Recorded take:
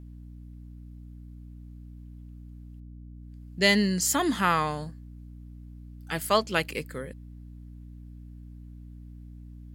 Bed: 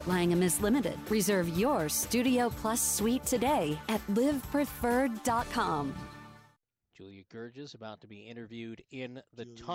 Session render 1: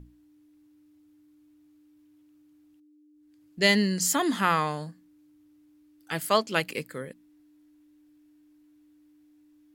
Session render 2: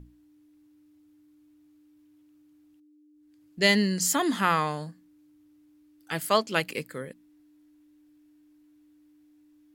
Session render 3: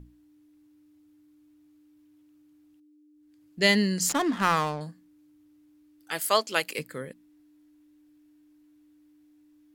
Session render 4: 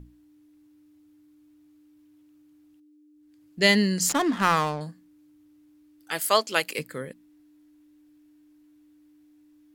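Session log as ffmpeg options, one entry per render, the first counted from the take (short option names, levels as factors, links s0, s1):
-af "bandreject=f=60:t=h:w=6,bandreject=f=120:t=h:w=6,bandreject=f=180:t=h:w=6,bandreject=f=240:t=h:w=6"
-af anull
-filter_complex "[0:a]asettb=1/sr,asplit=3[s0][s1][s2];[s0]atrim=end=4.094[s3];[s1]atrim=start=4.09:end=4.81,asetpts=PTS-STARTPTS,afade=t=in:d=0.004:c=qsin,afade=t=out:st=0.716:d=0.004:c=qsin,adynamicsmooth=sensitivity=6.5:basefreq=550[s4];[s2]atrim=start=4.806[s5];[s3][s4]acrossfade=d=0.004:c1=hsin:c2=qsin[s6];[s6][s5]acrossfade=d=0.004:c1=qsin:c2=hsin,asettb=1/sr,asplit=3[s7][s8][s9];[s7]atrim=end=6.114[s10];[s8]atrim=start=6.11:end=6.79,asetpts=PTS-STARTPTS,afade=t=in:d=0.004:c=qsin,afade=t=out:st=0.676:d=0.004:c=qsin,bass=f=250:g=-14,treble=f=4000:g=5[s11];[s9]atrim=start=6.786[s12];[s10][s11]acrossfade=d=0.004:c1=hsin:c2=qsin[s13];[s13][s12]acrossfade=d=0.004:c1=qsin:c2=hsin"
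-af "volume=1.26"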